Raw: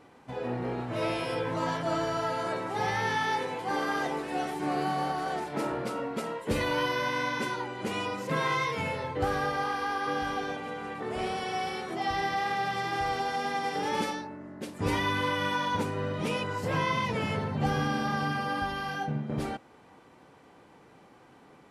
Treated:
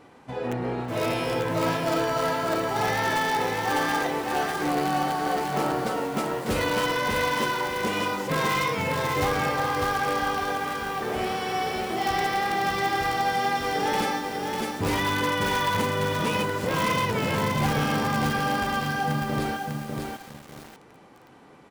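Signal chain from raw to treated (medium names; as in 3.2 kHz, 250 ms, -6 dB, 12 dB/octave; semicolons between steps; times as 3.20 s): in parallel at -5 dB: integer overflow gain 21.5 dB; on the sum: delay 330 ms -21.5 dB; bit-crushed delay 598 ms, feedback 35%, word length 7-bit, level -3 dB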